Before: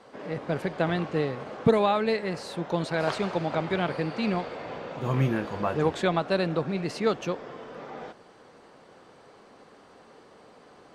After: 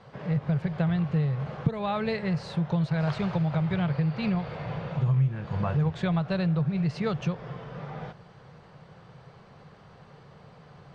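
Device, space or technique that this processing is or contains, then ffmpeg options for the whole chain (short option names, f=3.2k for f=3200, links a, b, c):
jukebox: -filter_complex "[0:a]lowpass=5k,lowshelf=f=200:t=q:w=3:g=10.5,acompressor=threshold=-24dB:ratio=4,asettb=1/sr,asplit=3[a][b][c];[a]atrim=end=3.864[d];[b]atrim=start=3.86:end=4.47,asetpts=PTS-STARTPTS,afade=t=in:d=0.004:c=qsin,afade=t=out:st=0.606:d=0.004:c=qsin,lowpass=6.8k[e];[c]atrim=start=4.466[f];[d][e]acrossfade=d=0.004:c1=hsin:c2=qsin[g];[g][f]acrossfade=d=0.004:c1=qsin:c2=hsin"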